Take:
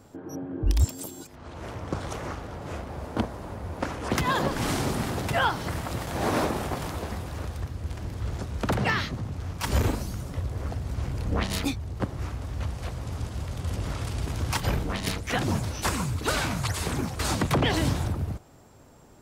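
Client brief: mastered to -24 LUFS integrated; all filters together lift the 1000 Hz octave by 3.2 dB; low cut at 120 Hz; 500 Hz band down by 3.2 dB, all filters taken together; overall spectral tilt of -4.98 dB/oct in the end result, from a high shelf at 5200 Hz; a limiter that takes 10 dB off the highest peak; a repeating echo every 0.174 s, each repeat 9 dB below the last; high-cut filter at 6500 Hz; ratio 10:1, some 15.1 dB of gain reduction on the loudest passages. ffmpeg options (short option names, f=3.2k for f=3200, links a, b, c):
-af "highpass=120,lowpass=6.5k,equalizer=f=500:t=o:g=-6,equalizer=f=1k:t=o:g=6,highshelf=f=5.2k:g=-8.5,acompressor=threshold=-34dB:ratio=10,alimiter=level_in=6.5dB:limit=-24dB:level=0:latency=1,volume=-6.5dB,aecho=1:1:174|348|522|696:0.355|0.124|0.0435|0.0152,volume=16dB"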